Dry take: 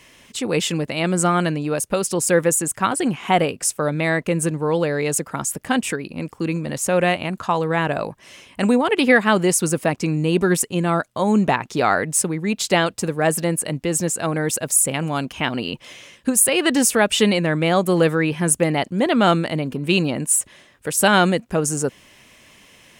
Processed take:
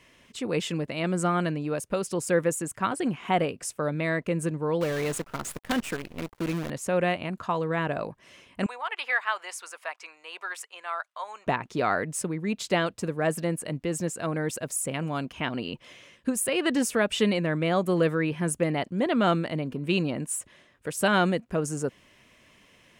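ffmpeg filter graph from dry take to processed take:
-filter_complex "[0:a]asettb=1/sr,asplit=3[s0][s1][s2];[s0]atrim=end=4.814[s3];[s1]atrim=start=4.81:end=6.7,asetpts=PTS-STARTPTS,afade=t=in:d=0.004:c=qsin,afade=t=out:st=1.886:d=0.004:c=qsin,acrusher=bits=5:dc=4:mix=0:aa=0.000001,aeval=exprs='(mod(2.37*val(0)+1,2)-1)/2.37':c=same[s4];[s2]atrim=start=6.696[s5];[s3][s4]acrossfade=d=0.004:c1=hsin:c2=qsin[s6];[s6][s5]acrossfade=d=0.004:c1=qsin:c2=hsin,asettb=1/sr,asplit=3[s7][s8][s9];[s7]atrim=end=8.664[s10];[s8]atrim=start=8.66:end=11.47,asetpts=PTS-STARTPTS,afade=t=in:d=0.004:c=qsin,afade=t=out:st=2.806:d=0.004:c=qsin,highpass=f=840:w=0.5412,highpass=f=840:w=1.3066,highshelf=f=5800:g=-8.5[s11];[s9]atrim=start=11.466[s12];[s10][s11]acrossfade=d=0.004:c1=hsin:c2=qsin[s13];[s13][s12]acrossfade=d=0.004:c1=qsin:c2=hsin,highshelf=f=4400:g=-8.5,bandreject=f=820:w=12,volume=0.473"

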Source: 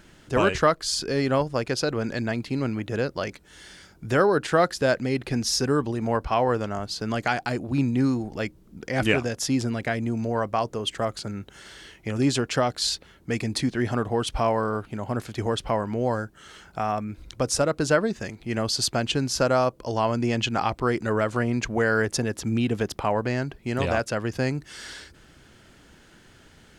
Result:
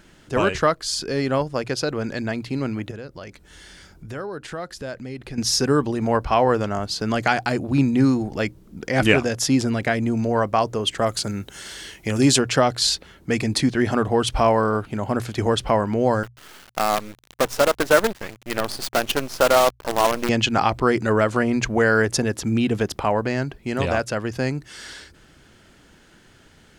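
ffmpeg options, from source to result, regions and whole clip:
-filter_complex "[0:a]asettb=1/sr,asplit=3[s0][s1][s2];[s0]atrim=end=2.914[s3];[s1]atrim=start=2.91:end=5.38,asetpts=PTS-STARTPTS,afade=t=in:d=0.004:c=qsin,afade=t=out:st=2.466:d=0.004:c=qsin,lowshelf=f=69:g=11.5,acompressor=threshold=0.00708:ratio=2:attack=3.2:release=140:knee=1:detection=peak[s4];[s2]atrim=start=5.376[s5];[s3][s4]acrossfade=d=0.004:c1=hsin:c2=qsin[s6];[s6][s5]acrossfade=d=0.004:c1=qsin:c2=hsin,asettb=1/sr,asplit=3[s7][s8][s9];[s7]atrim=end=11.064[s10];[s8]atrim=start=11.06:end=12.39,asetpts=PTS-STARTPTS,afade=t=in:d=0.004:c=qsin,afade=t=out:st=1.326:d=0.004:c=qsin,highshelf=f=4900:g=10,bandreject=f=1300:w=29[s11];[s9]atrim=start=12.386[s12];[s10][s11]acrossfade=d=0.004:c1=hsin:c2=qsin[s13];[s13][s12]acrossfade=d=0.004:c1=qsin:c2=hsin,asettb=1/sr,asplit=3[s14][s15][s16];[s14]atrim=end=16.234[s17];[s15]atrim=start=16.23:end=20.29,asetpts=PTS-STARTPTS,afade=t=in:d=0.004:c=qsin,afade=t=out:st=4.056:d=0.004:c=qsin,bass=f=250:g=-12,treble=f=4000:g=-12,acrusher=bits=5:dc=4:mix=0:aa=0.000001[s18];[s16]atrim=start=20.286[s19];[s17][s18]acrossfade=d=0.004:c1=hsin:c2=qsin[s20];[s20][s19]acrossfade=d=0.004:c1=qsin:c2=hsin,bandreject=f=60:t=h:w=6,bandreject=f=120:t=h:w=6,dynaudnorm=f=580:g=17:m=2.11,volume=1.12"

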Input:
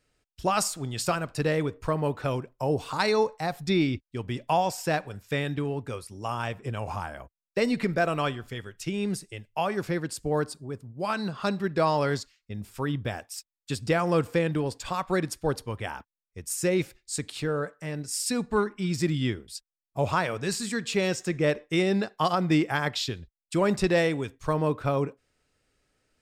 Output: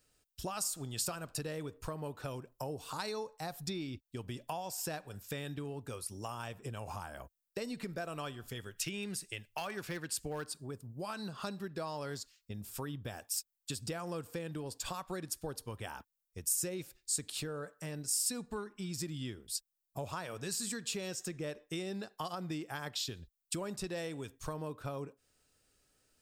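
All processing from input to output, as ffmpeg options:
-filter_complex "[0:a]asettb=1/sr,asplit=3[s0][s1][s2];[s0]atrim=end=8.764[s3];[s1]atrim=start=8.76:end=10.71,asetpts=PTS-STARTPTS,afade=t=in:d=0.004:c=qsin,afade=t=out:st=1.946:d=0.004:c=qsin,equalizer=f=2200:t=o:w=1.7:g=9.5,asoftclip=type=hard:threshold=0.126[s4];[s2]atrim=start=10.706[s5];[s3][s4]acrossfade=d=0.004:c1=hsin:c2=qsin[s6];[s6][s5]acrossfade=d=0.004:c1=qsin:c2=hsin,equalizer=f=2100:w=4.4:g=-5.5,acompressor=threshold=0.0158:ratio=4,aemphasis=mode=production:type=50kf,volume=0.668"

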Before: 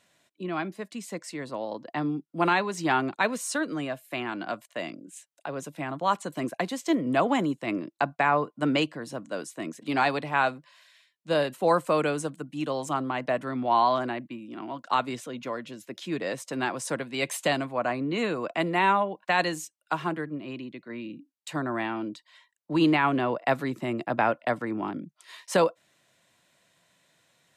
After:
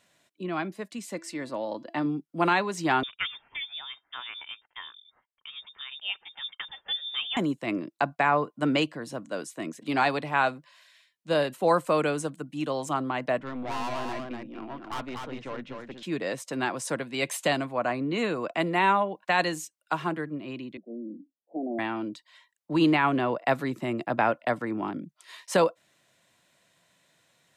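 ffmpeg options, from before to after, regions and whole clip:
-filter_complex "[0:a]asettb=1/sr,asplit=3[s0][s1][s2];[s0]atrim=end=0.984[s3];[s1]atrim=start=0.98:end=2.06,asetpts=PTS-STARTPTS,afade=t=in:d=0.004:c=qsin,afade=t=out:st=1.076:d=0.004:c=qsin,aecho=1:1:3.4:0.33,atrim=end_sample=47628,bandreject=f=334.3:t=h:w=4,bandreject=f=668.6:t=h:w=4,bandreject=f=1002.9:t=h:w=4,bandreject=f=1337.2:t=h:w=4,bandreject=f=1671.5:t=h:w=4,bandreject=f=2005.8:t=h:w=4,bandreject=f=2340.1:t=h:w=4,bandreject=f=2674.4:t=h:w=4,bandreject=f=3008.7:t=h:w=4,bandreject=f=3343:t=h:w=4,bandreject=f=3677.3:t=h:w=4,bandreject=f=4011.6:t=h:w=4,bandreject=f=4345.9:t=h:w=4,bandreject=f=4680.2:t=h:w=4,bandreject=f=5014.5:t=h:w=4,bandreject=f=5348.8:t=h:w=4[s4];[s2]atrim=start=2.056[s5];[s3][s4]acrossfade=d=0.004:c1=hsin:c2=qsin[s6];[s6][s5]acrossfade=d=0.004:c1=qsin:c2=hsin,asettb=1/sr,asplit=3[s7][s8][s9];[s7]atrim=end=3.034[s10];[s8]atrim=start=3.03:end=7.37,asetpts=PTS-STARTPTS,afade=t=in:d=0.004:c=qsin,afade=t=out:st=4.336:d=0.004:c=qsin,equalizer=f=510:w=0.43:g=-7,acrossover=split=940[s11][s12];[s11]aeval=exprs='val(0)*(1-0.7/2+0.7/2*cos(2*PI*8.2*n/s))':c=same[s13];[s12]aeval=exprs='val(0)*(1-0.7/2-0.7/2*cos(2*PI*8.2*n/s))':c=same[s14];[s13][s14]amix=inputs=2:normalize=0,lowpass=f=3200:t=q:w=0.5098,lowpass=f=3200:t=q:w=0.6013,lowpass=f=3200:t=q:w=0.9,lowpass=f=3200:t=q:w=2.563,afreqshift=-3800[s15];[s9]atrim=start=7.366[s16];[s10][s15]acrossfade=d=0.004:c1=hsin:c2=qsin[s17];[s17][s16]acrossfade=d=0.004:c1=qsin:c2=hsin,asettb=1/sr,asplit=3[s18][s19][s20];[s18]atrim=end=13.394[s21];[s19]atrim=start=13.39:end=16.03,asetpts=PTS-STARTPTS,afade=t=in:d=0.004:c=qsin,afade=t=out:st=2.636:d=0.004:c=qsin,lowpass=3300,aeval=exprs='(tanh(35.5*val(0)+0.55)-tanh(0.55))/35.5':c=same,aecho=1:1:243:0.631,atrim=end_sample=116424[s22];[s20]atrim=start=16.026[s23];[s21][s22]acrossfade=d=0.004:c1=hsin:c2=qsin[s24];[s24][s23]acrossfade=d=0.004:c1=qsin:c2=hsin,asettb=1/sr,asplit=3[s25][s26][s27];[s25]atrim=end=20.774[s28];[s26]atrim=start=20.77:end=21.79,asetpts=PTS-STARTPTS,afade=t=in:d=0.004:c=qsin,afade=t=out:st=1.016:d=0.004:c=qsin,aeval=exprs='(mod(10.6*val(0)+1,2)-1)/10.6':c=same,asuperpass=centerf=380:order=20:qfactor=0.65[s29];[s27]atrim=start=21.786[s30];[s28][s29]acrossfade=d=0.004:c1=hsin:c2=qsin[s31];[s31][s30]acrossfade=d=0.004:c1=qsin:c2=hsin"

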